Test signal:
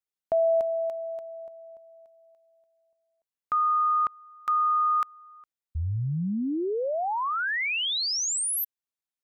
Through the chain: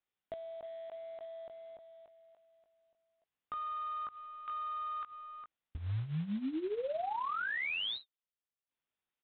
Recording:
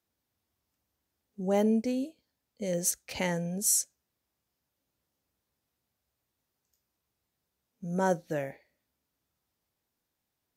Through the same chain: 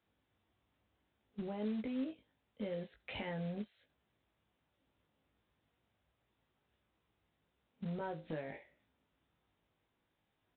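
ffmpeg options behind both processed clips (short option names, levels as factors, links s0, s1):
-filter_complex "[0:a]acompressor=threshold=0.0112:ratio=16:attack=0.29:release=92:knee=1:detection=rms,asplit=2[s0][s1];[s1]adelay=19,volume=0.596[s2];[s0][s2]amix=inputs=2:normalize=0,aresample=8000,acrusher=bits=5:mode=log:mix=0:aa=0.000001,aresample=44100,volume=1.5"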